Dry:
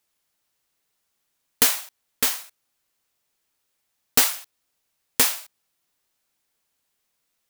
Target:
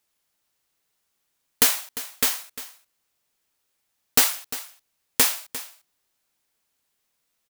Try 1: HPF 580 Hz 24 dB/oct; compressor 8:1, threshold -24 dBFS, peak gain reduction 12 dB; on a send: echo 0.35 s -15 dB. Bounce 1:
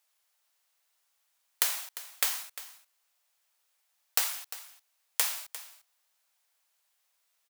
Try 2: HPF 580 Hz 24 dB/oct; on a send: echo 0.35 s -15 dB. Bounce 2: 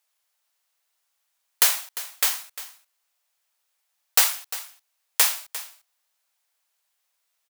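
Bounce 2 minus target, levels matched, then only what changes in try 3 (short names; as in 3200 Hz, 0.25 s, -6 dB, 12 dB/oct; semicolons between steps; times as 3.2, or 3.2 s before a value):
500 Hz band -6.0 dB
remove: HPF 580 Hz 24 dB/oct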